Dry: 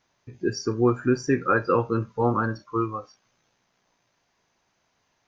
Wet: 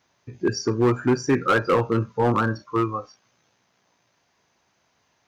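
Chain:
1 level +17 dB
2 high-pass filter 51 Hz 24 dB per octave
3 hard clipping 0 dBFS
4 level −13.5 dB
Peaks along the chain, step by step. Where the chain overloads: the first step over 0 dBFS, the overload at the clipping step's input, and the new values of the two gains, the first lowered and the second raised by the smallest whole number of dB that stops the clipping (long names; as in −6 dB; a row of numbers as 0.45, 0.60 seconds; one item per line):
+8.0, +8.0, 0.0, −13.5 dBFS
step 1, 8.0 dB
step 1 +9 dB, step 4 −5.5 dB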